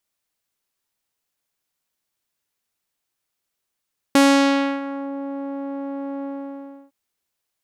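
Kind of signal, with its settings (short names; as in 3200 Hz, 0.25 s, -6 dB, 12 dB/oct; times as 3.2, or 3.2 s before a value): synth note saw C#4 12 dB/oct, low-pass 770 Hz, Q 0.89, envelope 4 oct, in 0.96 s, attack 2.4 ms, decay 0.65 s, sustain -16 dB, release 0.67 s, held 2.09 s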